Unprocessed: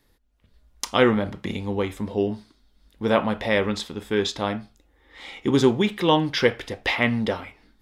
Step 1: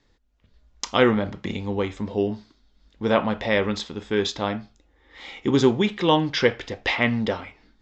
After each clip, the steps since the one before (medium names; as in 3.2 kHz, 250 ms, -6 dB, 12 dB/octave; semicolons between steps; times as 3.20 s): steep low-pass 7.4 kHz 72 dB/octave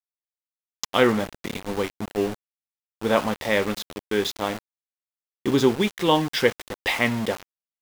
bass shelf 140 Hz -5 dB; small samples zeroed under -28.5 dBFS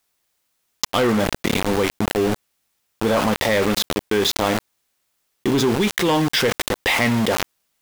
waveshaping leveller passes 3; level flattener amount 70%; trim -9 dB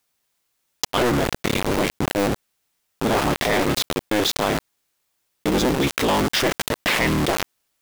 cycle switcher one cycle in 3, inverted; trim -1.5 dB